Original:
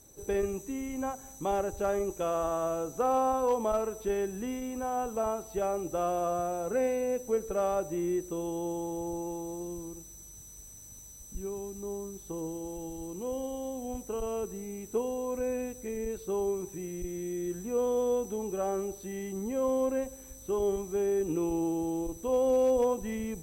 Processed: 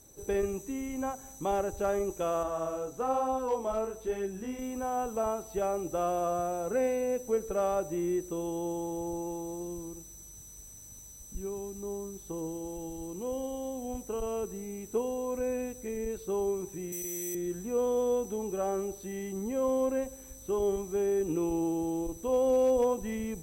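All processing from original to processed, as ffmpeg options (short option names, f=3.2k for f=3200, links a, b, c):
-filter_complex "[0:a]asettb=1/sr,asplit=3[a][b][c];[a]atrim=end=2.434[d];[b]atrim=start=2.43:end=4.59,asetpts=PTS-STARTPTS,afade=t=in:d=0.004:c=qsin,afade=t=out:st=2.156:d=0.004:c=qsin,highshelf=f=11k:g=-4,flanger=delay=15.5:depth=7.3:speed=1.1[e];[c]atrim=start=4.586[f];[d][e]acrossfade=d=0.004:c1=hsin:c2=qsin[g];[g][f]acrossfade=d=0.004:c1=qsin:c2=hsin,asettb=1/sr,asplit=3[h][i][j];[h]atrim=end=16.924[k];[i]atrim=start=16.92:end=17.35,asetpts=PTS-STARTPTS,afade=t=in:d=0.004:c=qsin,afade=t=out:st=0.426:d=0.004:c=qsin,highpass=f=370:p=1,aemphasis=mode=production:type=75kf[l];[j]atrim=start=17.346[m];[k][l]acrossfade=d=0.004:c1=hsin:c2=qsin[n];[n][m]acrossfade=d=0.004:c1=qsin:c2=hsin"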